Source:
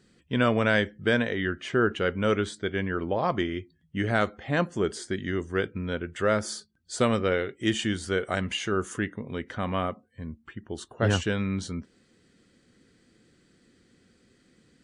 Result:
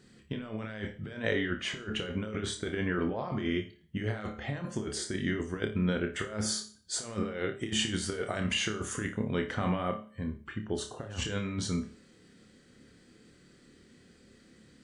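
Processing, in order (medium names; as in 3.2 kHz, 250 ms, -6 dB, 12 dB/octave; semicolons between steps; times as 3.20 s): compressor with a negative ratio -30 dBFS, ratio -0.5; flutter echo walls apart 4.8 m, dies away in 0.25 s; Schroeder reverb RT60 0.45 s, combs from 29 ms, DRR 12.5 dB; trim -2.5 dB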